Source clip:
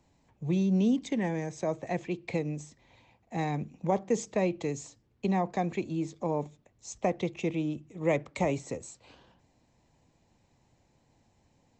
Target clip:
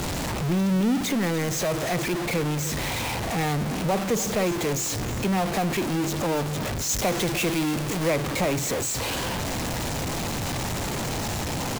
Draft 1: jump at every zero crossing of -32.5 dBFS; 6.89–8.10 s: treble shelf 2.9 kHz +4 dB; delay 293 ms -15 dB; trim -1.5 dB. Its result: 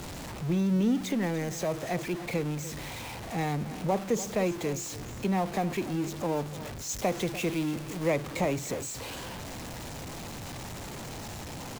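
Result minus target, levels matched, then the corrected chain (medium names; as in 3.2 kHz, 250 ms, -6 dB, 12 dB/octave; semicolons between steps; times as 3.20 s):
jump at every zero crossing: distortion -8 dB
jump at every zero crossing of -21 dBFS; 6.89–8.10 s: treble shelf 2.9 kHz +4 dB; delay 293 ms -15 dB; trim -1.5 dB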